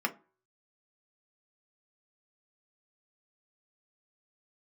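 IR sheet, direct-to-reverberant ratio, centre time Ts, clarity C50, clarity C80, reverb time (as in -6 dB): 3.0 dB, 6 ms, 18.5 dB, 25.0 dB, 0.40 s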